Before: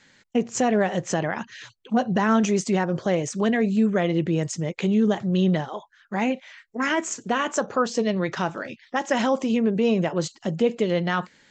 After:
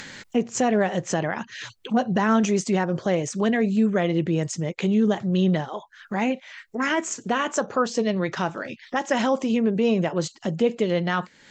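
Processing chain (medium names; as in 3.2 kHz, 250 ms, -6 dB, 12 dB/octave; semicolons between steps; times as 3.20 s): upward compressor, threshold -26 dBFS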